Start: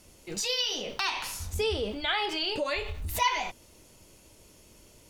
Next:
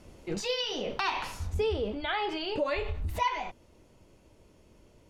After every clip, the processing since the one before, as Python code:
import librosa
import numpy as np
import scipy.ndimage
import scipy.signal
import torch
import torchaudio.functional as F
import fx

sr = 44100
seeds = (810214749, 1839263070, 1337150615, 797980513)

y = fx.lowpass(x, sr, hz=1300.0, slope=6)
y = fx.rider(y, sr, range_db=4, speed_s=0.5)
y = F.gain(torch.from_numpy(y), 2.5).numpy()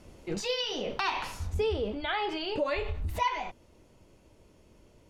y = x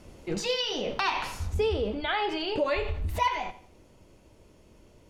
y = fx.echo_feedback(x, sr, ms=86, feedback_pct=34, wet_db=-15.5)
y = F.gain(torch.from_numpy(y), 2.5).numpy()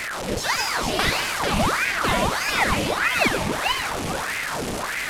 y = fx.delta_mod(x, sr, bps=64000, step_db=-28.0)
y = fx.echo_feedback(y, sr, ms=444, feedback_pct=36, wet_db=-3.5)
y = fx.ring_lfo(y, sr, carrier_hz=1100.0, swing_pct=90, hz=1.6)
y = F.gain(torch.from_numpy(y), 7.5).numpy()